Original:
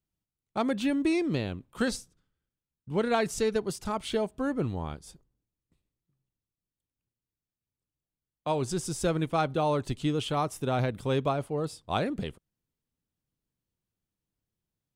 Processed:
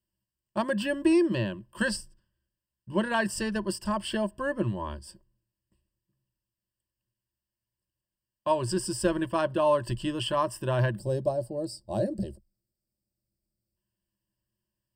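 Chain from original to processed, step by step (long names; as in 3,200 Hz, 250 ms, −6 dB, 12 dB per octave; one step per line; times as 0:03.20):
EQ curve with evenly spaced ripples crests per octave 1.3, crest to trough 17 dB
gain on a spectral selection 0:10.98–0:13.76, 880–3,700 Hz −18 dB
dynamic equaliser 1,300 Hz, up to +4 dB, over −43 dBFS, Q 1.4
level −2 dB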